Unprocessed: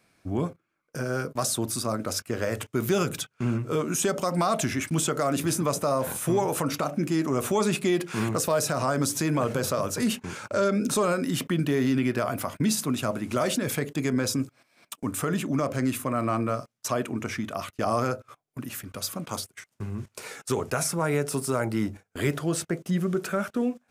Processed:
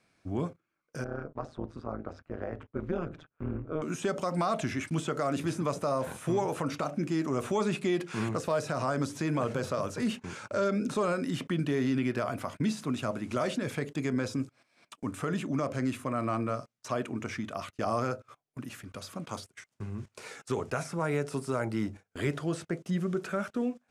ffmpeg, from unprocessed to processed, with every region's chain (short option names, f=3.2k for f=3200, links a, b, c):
-filter_complex "[0:a]asettb=1/sr,asplit=3[a][b][c];[a]atrim=end=1.044[d];[b]atrim=start=1.04:end=3.82,asetpts=PTS-STARTPTS,afade=t=in:d=0.004:c=qsin,afade=t=out:st=2.776:d=0.004:c=qsin,lowpass=1.4k,tremolo=f=160:d=0.889[e];[c]atrim=start=3.816[f];[d][e]acrossfade=d=0.004:c1=hsin:c2=qsin[g];[g][f]acrossfade=d=0.004:c1=qsin:c2=hsin,acrossover=split=3200[h][i];[i]acompressor=threshold=-37dB:ratio=4:attack=1:release=60[j];[h][j]amix=inputs=2:normalize=0,lowpass=8.7k,volume=-4.5dB"